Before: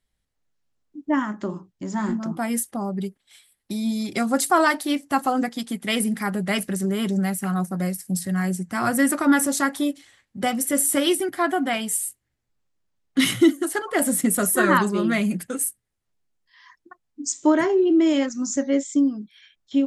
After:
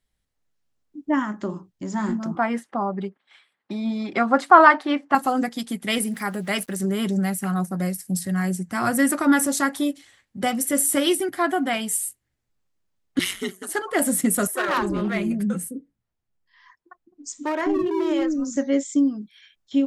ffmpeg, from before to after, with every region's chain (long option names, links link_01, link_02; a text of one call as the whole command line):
ffmpeg -i in.wav -filter_complex "[0:a]asettb=1/sr,asplit=3[link_01][link_02][link_03];[link_01]atrim=end=2.354[link_04];[link_02]atrim=start=2.35:end=5.15,asetpts=PTS-STARTPTS,afade=type=in:duration=0.004:curve=qsin,afade=type=out:start_time=2.796:duration=0.004:curve=qsin,highpass=190,lowpass=2900,equalizer=frequency=1100:width=0.84:gain=9[link_05];[link_03]atrim=start=5.146[link_06];[link_04][link_05]acrossfade=duration=0.004:curve1=hsin:curve2=qsin[link_07];[link_07][link_06]acrossfade=duration=0.004:curve1=qsin:curve2=hsin,asettb=1/sr,asplit=3[link_08][link_09][link_10];[link_08]atrim=end=5.984[link_11];[link_09]atrim=start=5.98:end=6.8,asetpts=PTS-STARTPTS,afade=type=in:duration=0.004:curve=qsin,afade=type=out:start_time=0.816:duration=0.004:curve=qsin,lowshelf=frequency=200:gain=-8,aeval=exprs='val(0)*gte(abs(val(0)),0.00501)':channel_layout=same[link_12];[link_10]atrim=start=6.796[link_13];[link_11][link_12]acrossfade=duration=0.004:curve1=hsin:curve2=qsin[link_14];[link_14][link_13]acrossfade=duration=0.004:curve1=qsin:curve2=hsin,asettb=1/sr,asplit=3[link_15][link_16][link_17];[link_15]atrim=end=13.194[link_18];[link_16]atrim=start=13.19:end=13.69,asetpts=PTS-STARTPTS,afade=type=in:duration=0.004:curve=qsin,afade=type=out:start_time=0.496:duration=0.004:curve=qsin,highpass=frequency=1200:poles=1,aeval=exprs='val(0)*sin(2*PI*93*n/s)':channel_layout=same[link_19];[link_17]atrim=start=13.686[link_20];[link_18][link_19]acrossfade=duration=0.004:curve1=hsin:curve2=qsin[link_21];[link_21][link_20]acrossfade=duration=0.004:curve1=qsin:curve2=hsin,asettb=1/sr,asplit=3[link_22][link_23][link_24];[link_22]atrim=end=14.474[link_25];[link_23]atrim=start=14.47:end=18.56,asetpts=PTS-STARTPTS,afade=type=in:duration=0.004:curve=qsin,afade=type=out:start_time=4.086:duration=0.004:curve=qsin,highshelf=frequency=3000:gain=-10,volume=16.5dB,asoftclip=hard,volume=-16.5dB,acrossover=split=370[link_26][link_27];[link_26]adelay=210[link_28];[link_28][link_27]amix=inputs=2:normalize=0,atrim=end_sample=180369[link_29];[link_24]atrim=start=18.556[link_30];[link_25][link_29]acrossfade=duration=0.004:curve1=hsin:curve2=qsin[link_31];[link_31][link_30]acrossfade=duration=0.004:curve1=qsin:curve2=hsin" out.wav